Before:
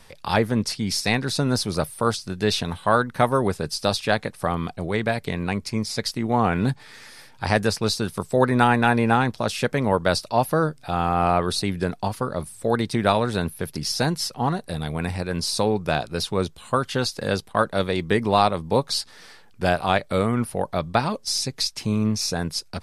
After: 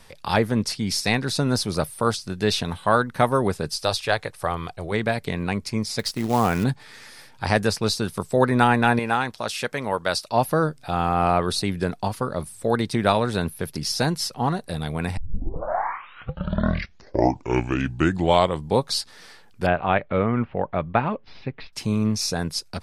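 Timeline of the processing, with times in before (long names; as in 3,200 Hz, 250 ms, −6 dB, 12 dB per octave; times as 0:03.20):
0:03.76–0:04.92: parametric band 220 Hz −13 dB
0:05.99–0:06.64: floating-point word with a short mantissa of 2 bits
0:08.99–0:10.31: low-shelf EQ 460 Hz −10.5 dB
0:15.17: tape start 3.70 s
0:19.66–0:21.73: Butterworth low-pass 2,900 Hz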